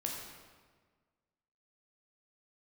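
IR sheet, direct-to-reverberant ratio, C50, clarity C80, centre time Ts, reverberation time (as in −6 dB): −1.0 dB, 2.0 dB, 3.5 dB, 67 ms, 1.5 s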